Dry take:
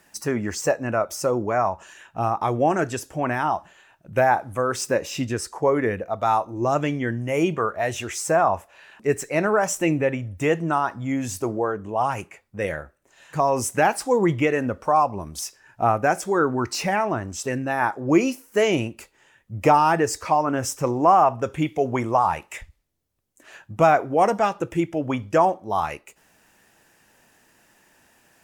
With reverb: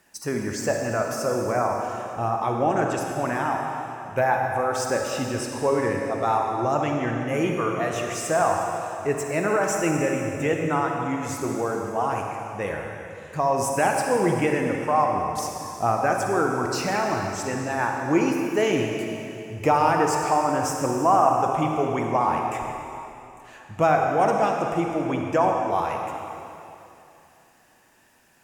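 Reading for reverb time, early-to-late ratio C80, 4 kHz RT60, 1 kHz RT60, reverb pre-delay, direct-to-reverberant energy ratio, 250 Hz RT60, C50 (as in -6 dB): 2.9 s, 2.5 dB, 2.7 s, 2.8 s, 36 ms, 1.0 dB, 2.9 s, 1.5 dB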